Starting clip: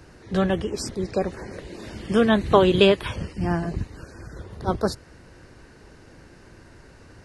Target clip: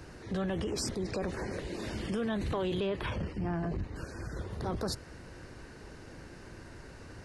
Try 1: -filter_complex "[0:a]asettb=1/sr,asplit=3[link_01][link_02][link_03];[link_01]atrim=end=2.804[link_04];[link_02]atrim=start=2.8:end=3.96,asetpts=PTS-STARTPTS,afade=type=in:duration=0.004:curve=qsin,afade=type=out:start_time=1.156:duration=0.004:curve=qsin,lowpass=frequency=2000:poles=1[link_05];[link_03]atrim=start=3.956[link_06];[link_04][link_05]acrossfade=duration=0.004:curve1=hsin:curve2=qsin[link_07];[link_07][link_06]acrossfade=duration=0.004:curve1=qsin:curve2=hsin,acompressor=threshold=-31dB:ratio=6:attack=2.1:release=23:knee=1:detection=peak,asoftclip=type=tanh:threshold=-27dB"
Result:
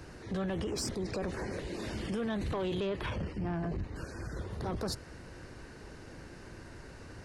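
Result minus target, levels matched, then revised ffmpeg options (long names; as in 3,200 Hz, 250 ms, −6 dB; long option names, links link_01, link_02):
soft clipping: distortion +12 dB
-filter_complex "[0:a]asettb=1/sr,asplit=3[link_01][link_02][link_03];[link_01]atrim=end=2.804[link_04];[link_02]atrim=start=2.8:end=3.96,asetpts=PTS-STARTPTS,afade=type=in:duration=0.004:curve=qsin,afade=type=out:start_time=1.156:duration=0.004:curve=qsin,lowpass=frequency=2000:poles=1[link_05];[link_03]atrim=start=3.956[link_06];[link_04][link_05]acrossfade=duration=0.004:curve1=hsin:curve2=qsin[link_07];[link_07][link_06]acrossfade=duration=0.004:curve1=qsin:curve2=hsin,acompressor=threshold=-31dB:ratio=6:attack=2.1:release=23:knee=1:detection=peak,asoftclip=type=tanh:threshold=-20dB"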